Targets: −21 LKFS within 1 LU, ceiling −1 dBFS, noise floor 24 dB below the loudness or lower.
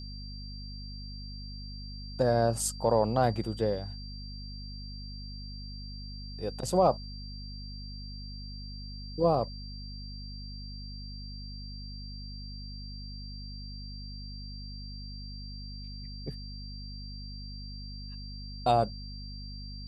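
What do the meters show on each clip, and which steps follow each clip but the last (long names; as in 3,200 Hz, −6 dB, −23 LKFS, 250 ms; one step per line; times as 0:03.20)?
mains hum 50 Hz; hum harmonics up to 250 Hz; level of the hum −40 dBFS; interfering tone 4,700 Hz; level of the tone −46 dBFS; integrated loudness −35.0 LKFS; sample peak −12.5 dBFS; target loudness −21.0 LKFS
→ mains-hum notches 50/100/150/200/250 Hz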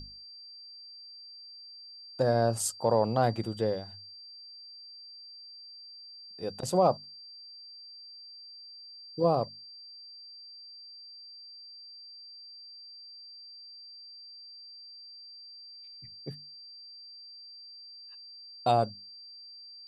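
mains hum none found; interfering tone 4,700 Hz; level of the tone −46 dBFS
→ notch filter 4,700 Hz, Q 30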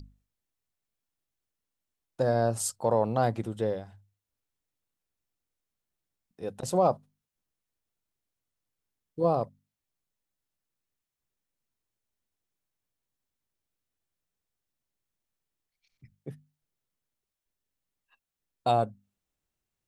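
interfering tone none found; integrated loudness −28.5 LKFS; sample peak −12.5 dBFS; target loudness −21.0 LKFS
→ level +7.5 dB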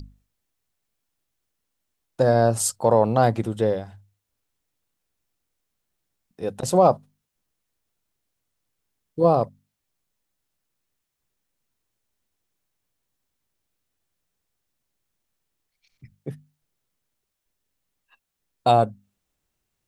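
integrated loudness −21.5 LKFS; sample peak −5.0 dBFS; background noise floor −81 dBFS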